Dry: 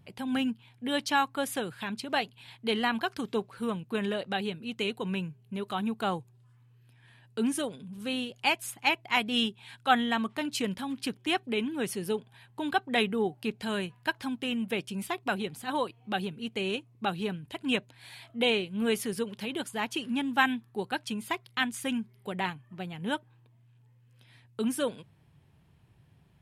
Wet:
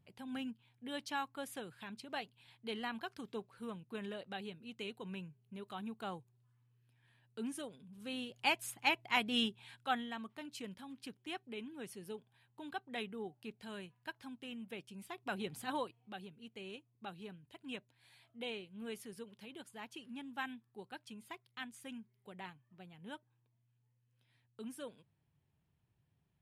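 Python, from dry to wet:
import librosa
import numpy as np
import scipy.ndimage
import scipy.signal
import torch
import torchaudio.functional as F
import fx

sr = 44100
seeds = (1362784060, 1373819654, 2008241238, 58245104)

y = fx.gain(x, sr, db=fx.line((7.89, -13.0), (8.49, -6.0), (9.62, -6.0), (10.11, -15.5), (15.06, -15.5), (15.59, -4.0), (16.15, -17.0)))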